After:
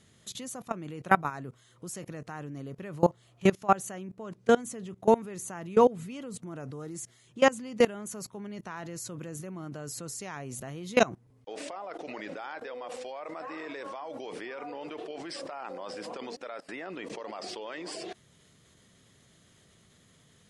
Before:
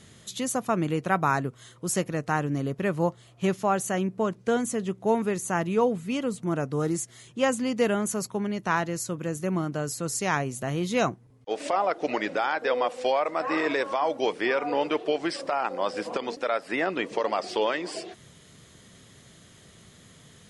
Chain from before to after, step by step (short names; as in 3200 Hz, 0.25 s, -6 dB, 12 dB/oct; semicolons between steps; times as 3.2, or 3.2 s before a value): level quantiser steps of 22 dB; gain +4.5 dB